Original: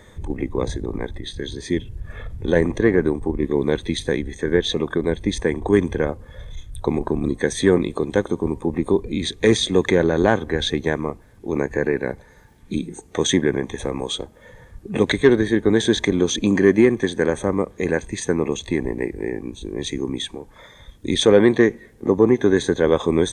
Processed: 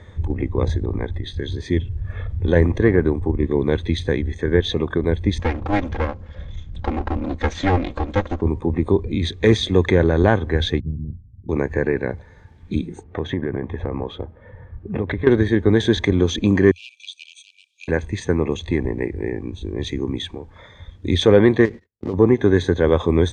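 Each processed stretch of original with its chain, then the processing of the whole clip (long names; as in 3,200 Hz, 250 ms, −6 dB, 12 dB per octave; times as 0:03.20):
0:05.39–0:08.42: lower of the sound and its delayed copy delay 3.7 ms + Butterworth low-pass 7,700 Hz 72 dB per octave
0:10.80–0:11.49: one scale factor per block 3 bits + inverse Chebyshev low-pass filter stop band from 1,200 Hz, stop band 80 dB
0:13.03–0:15.27: low-pass filter 1,800 Hz + downward compressor 4 to 1, threshold −20 dBFS
0:16.71–0:17.88: hard clipping −14.5 dBFS + linear-phase brick-wall high-pass 2,300 Hz
0:21.65–0:22.14: gap after every zero crossing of 0.12 ms + noise gate −42 dBFS, range −45 dB + downward compressor, threshold −21 dBFS
whole clip: low-pass filter 4,300 Hz 12 dB per octave; parametric band 87 Hz +13 dB 0.75 octaves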